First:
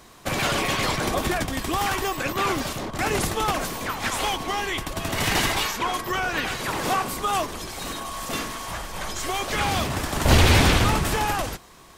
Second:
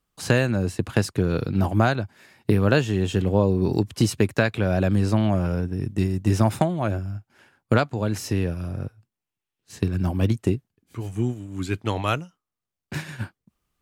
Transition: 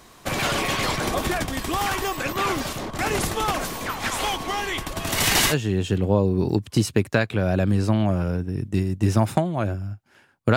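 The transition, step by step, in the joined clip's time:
first
0:05.07–0:05.55: high-shelf EQ 3,400 Hz +8.5 dB
0:05.52: continue with second from 0:02.76, crossfade 0.06 s

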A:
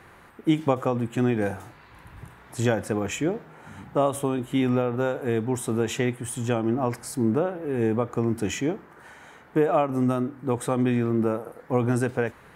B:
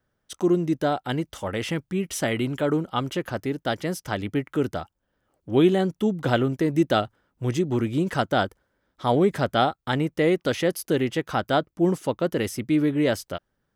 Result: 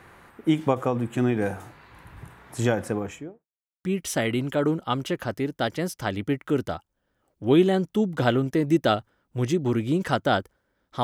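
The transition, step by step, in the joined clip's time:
A
0:02.80–0:03.47: fade out and dull
0:03.47–0:03.84: silence
0:03.84: continue with B from 0:01.90

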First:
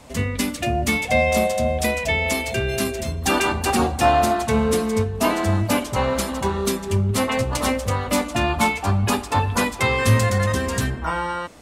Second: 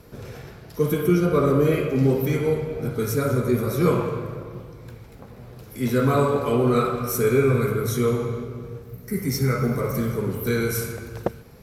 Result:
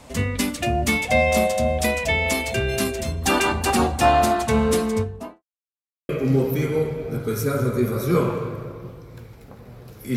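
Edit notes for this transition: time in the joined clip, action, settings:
first
0:04.80–0:05.43: fade out and dull
0:05.43–0:06.09: silence
0:06.09: continue with second from 0:01.80

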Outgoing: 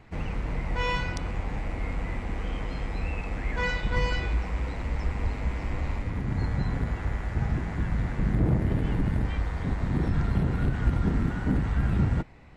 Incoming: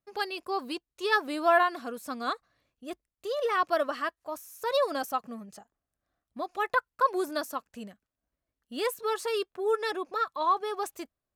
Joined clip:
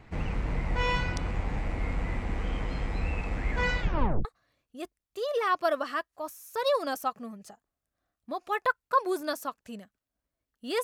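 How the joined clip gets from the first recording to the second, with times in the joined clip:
outgoing
0:03.81: tape stop 0.44 s
0:04.25: continue with incoming from 0:02.33

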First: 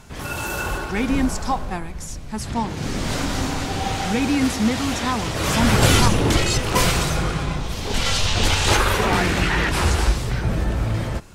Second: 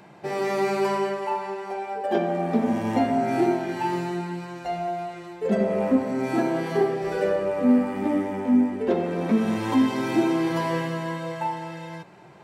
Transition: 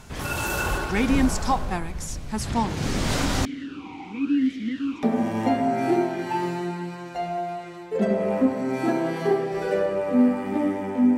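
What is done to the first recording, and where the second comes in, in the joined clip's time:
first
0:03.45–0:05.03: formant filter swept between two vowels i-u 0.89 Hz
0:05.03: continue with second from 0:02.53

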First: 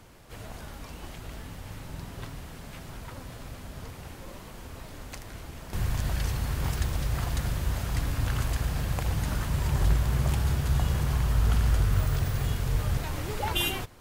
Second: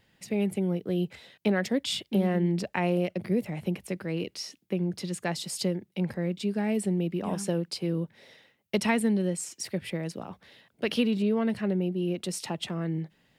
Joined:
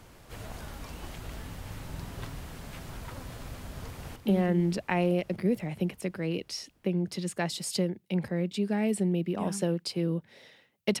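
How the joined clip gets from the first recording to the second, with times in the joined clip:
first
0:03.69–0:04.16: delay throw 300 ms, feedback 75%, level −10 dB
0:04.16: continue with second from 0:02.02

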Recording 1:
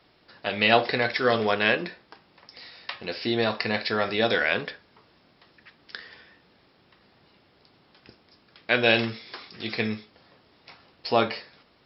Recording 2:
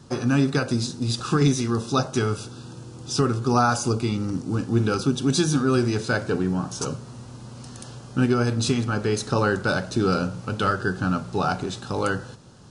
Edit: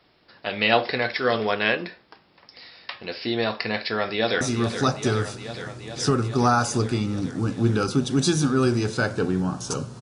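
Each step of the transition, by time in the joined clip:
recording 1
0:03.81–0:04.41: delay throw 420 ms, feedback 80%, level −9 dB
0:04.41: continue with recording 2 from 0:01.52

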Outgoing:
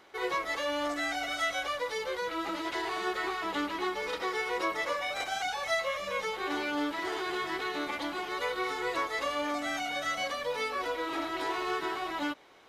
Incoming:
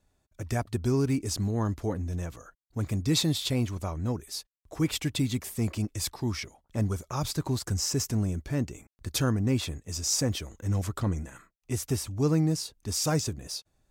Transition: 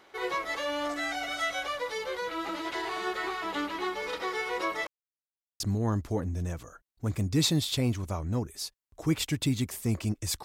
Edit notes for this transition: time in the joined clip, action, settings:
outgoing
0:04.87–0:05.60: silence
0:05.60: continue with incoming from 0:01.33

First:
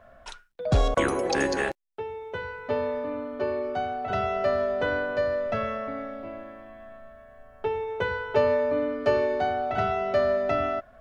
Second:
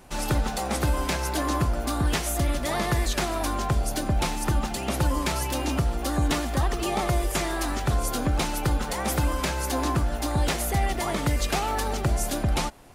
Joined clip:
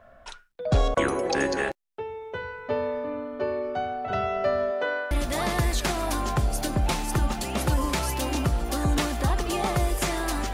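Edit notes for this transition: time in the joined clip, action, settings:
first
0:04.70–0:05.11: high-pass filter 270 Hz → 760 Hz
0:05.11: continue with second from 0:02.44

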